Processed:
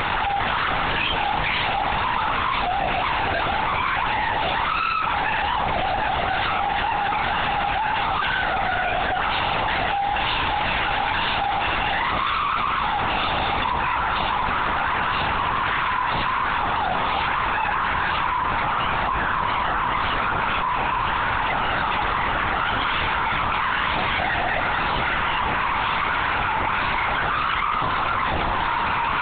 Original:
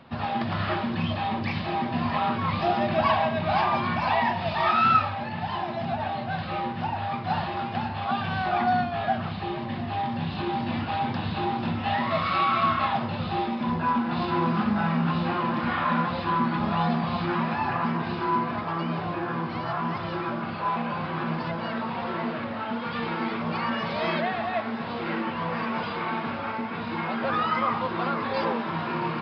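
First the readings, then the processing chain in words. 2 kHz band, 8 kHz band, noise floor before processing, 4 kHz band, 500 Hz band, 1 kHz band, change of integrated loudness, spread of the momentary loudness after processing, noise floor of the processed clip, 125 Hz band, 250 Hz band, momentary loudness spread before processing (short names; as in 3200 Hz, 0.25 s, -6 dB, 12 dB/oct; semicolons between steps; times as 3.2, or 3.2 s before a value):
+10.0 dB, n/a, -33 dBFS, +9.5 dB, +0.5 dB, +5.5 dB, +5.0 dB, 1 LU, -24 dBFS, -1.5 dB, -6.5 dB, 7 LU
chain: tracing distortion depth 0.18 ms; HPF 860 Hz 12 dB/oct; flange 0.14 Hz, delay 7.2 ms, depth 3.6 ms, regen +32%; LPC vocoder at 8 kHz whisper; fast leveller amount 100%; gain -2.5 dB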